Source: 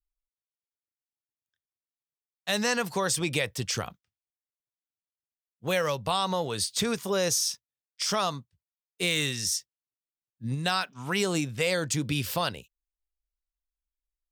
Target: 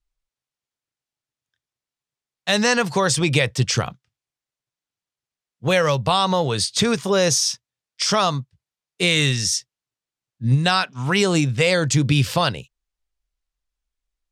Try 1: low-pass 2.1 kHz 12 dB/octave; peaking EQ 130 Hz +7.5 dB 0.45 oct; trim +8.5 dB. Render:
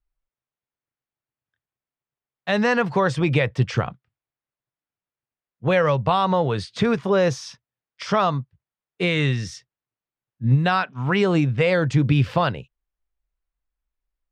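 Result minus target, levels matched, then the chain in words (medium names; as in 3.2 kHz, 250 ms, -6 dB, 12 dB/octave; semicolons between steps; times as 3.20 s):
8 kHz band -17.5 dB
low-pass 7.7 kHz 12 dB/octave; peaking EQ 130 Hz +7.5 dB 0.45 oct; trim +8.5 dB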